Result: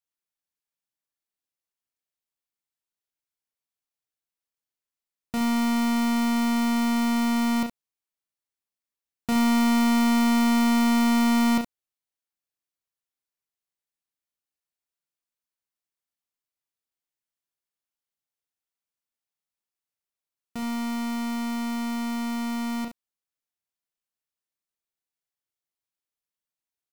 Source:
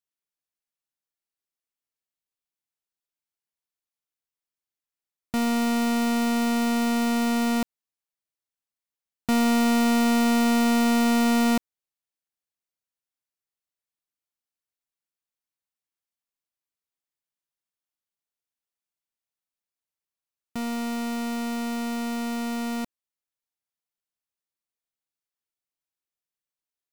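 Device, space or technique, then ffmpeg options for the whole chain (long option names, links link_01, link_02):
slapback doubling: -filter_complex "[0:a]asplit=3[link_01][link_02][link_03];[link_02]adelay=35,volume=-7dB[link_04];[link_03]adelay=69,volume=-8.5dB[link_05];[link_01][link_04][link_05]amix=inputs=3:normalize=0,volume=-2.5dB"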